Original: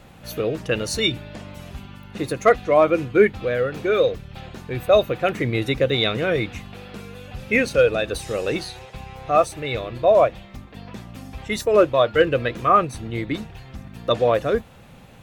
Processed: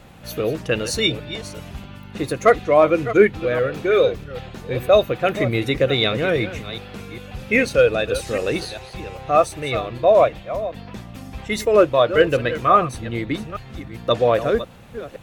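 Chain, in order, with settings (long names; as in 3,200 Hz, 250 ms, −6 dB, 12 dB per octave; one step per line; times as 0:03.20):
delay that plays each chunk backwards 399 ms, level −12.5 dB
level +1.5 dB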